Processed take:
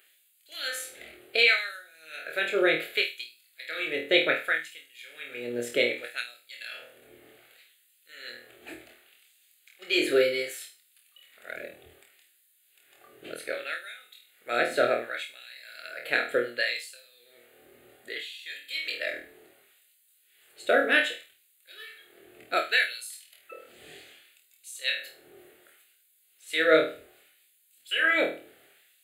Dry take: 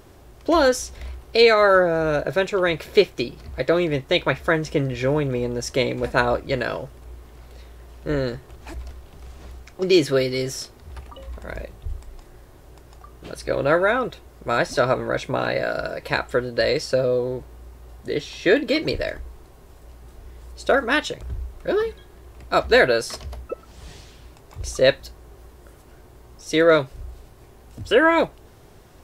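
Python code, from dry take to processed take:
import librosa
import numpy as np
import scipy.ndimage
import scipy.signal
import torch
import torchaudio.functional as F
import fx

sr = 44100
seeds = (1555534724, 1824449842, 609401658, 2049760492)

y = fx.fixed_phaser(x, sr, hz=2400.0, stages=4)
y = fx.room_flutter(y, sr, wall_m=4.3, rt60_s=0.37)
y = fx.filter_lfo_highpass(y, sr, shape='sine', hz=0.66, low_hz=380.0, high_hz=5600.0, q=0.71)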